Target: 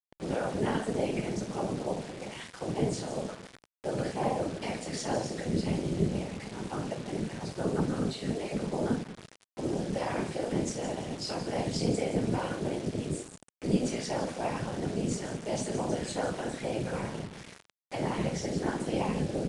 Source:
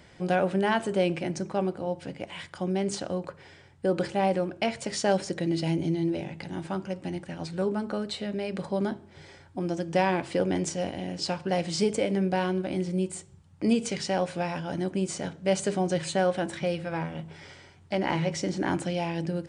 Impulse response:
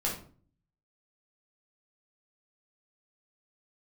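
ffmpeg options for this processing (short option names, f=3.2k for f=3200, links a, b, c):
-filter_complex "[0:a]acrossover=split=4000[a][b];[a]alimiter=limit=-19dB:level=0:latency=1:release=53[c];[b]asplit=5[d][e][f][g][h];[e]adelay=163,afreqshift=-110,volume=-9.5dB[i];[f]adelay=326,afreqshift=-220,volume=-19.4dB[j];[g]adelay=489,afreqshift=-330,volume=-29.3dB[k];[h]adelay=652,afreqshift=-440,volume=-39.2dB[l];[d][i][j][k][l]amix=inputs=5:normalize=0[m];[c][m]amix=inputs=2:normalize=0[n];[1:a]atrim=start_sample=2205[o];[n][o]afir=irnorm=-1:irlink=0,afftfilt=real='hypot(re,im)*cos(2*PI*random(0))':imag='hypot(re,im)*sin(2*PI*random(1))':win_size=512:overlap=0.75,acrusher=bits=6:mix=0:aa=0.000001,tremolo=f=230:d=0.71,lowshelf=f=75:g=-10" -ar 22050 -c:a adpcm_ima_wav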